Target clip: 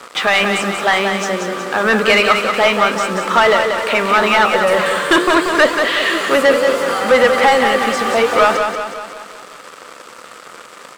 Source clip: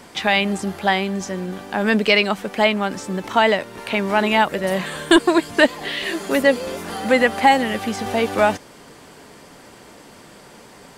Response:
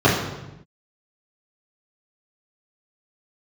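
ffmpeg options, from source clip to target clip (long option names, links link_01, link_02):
-filter_complex "[0:a]flanger=delay=7.6:depth=9.9:regen=-81:speed=0.69:shape=triangular,acrusher=bits=6:mix=0:aa=0.5,equalizer=frequency=100:width_type=o:width=0.33:gain=-10,equalizer=frequency=500:width_type=o:width=0.33:gain=7,equalizer=frequency=800:width_type=o:width=0.33:gain=-3,equalizer=frequency=1250:width_type=o:width=0.33:gain=11,equalizer=frequency=8000:width_type=o:width=0.33:gain=5,asplit=2[link_01][link_02];[link_02]highpass=frequency=720:poles=1,volume=18dB,asoftclip=type=tanh:threshold=-5dB[link_03];[link_01][link_03]amix=inputs=2:normalize=0,lowpass=frequency=3600:poles=1,volume=-6dB,aecho=1:1:184|368|552|736|920|1104:0.501|0.261|0.136|0.0705|0.0366|0.0191,volume=2dB"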